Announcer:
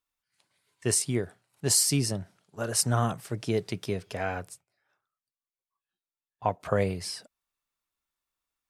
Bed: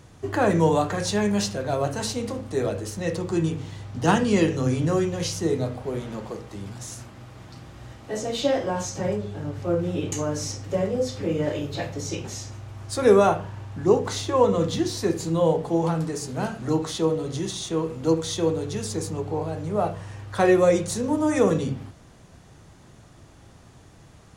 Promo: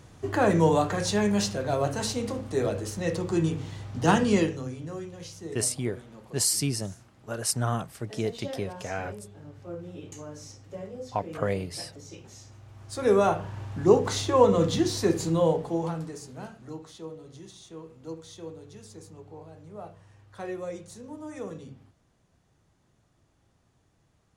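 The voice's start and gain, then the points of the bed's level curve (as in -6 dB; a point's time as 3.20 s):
4.70 s, -2.0 dB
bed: 4.34 s -1.5 dB
4.74 s -14.5 dB
12.26 s -14.5 dB
13.64 s 0 dB
15.24 s 0 dB
16.84 s -17.5 dB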